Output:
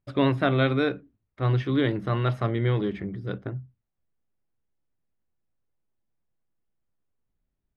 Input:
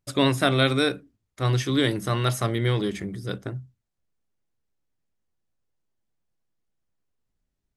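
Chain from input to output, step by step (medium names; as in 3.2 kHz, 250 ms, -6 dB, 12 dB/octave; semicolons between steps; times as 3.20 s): distance through air 390 m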